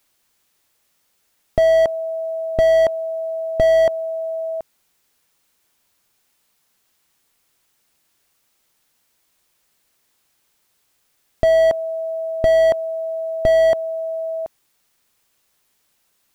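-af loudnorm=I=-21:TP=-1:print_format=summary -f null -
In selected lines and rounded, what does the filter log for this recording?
Input Integrated:    -18.9 LUFS
Input True Peak:      -3.3 dBTP
Input LRA:             5.0 LU
Input Threshold:     -32.7 LUFS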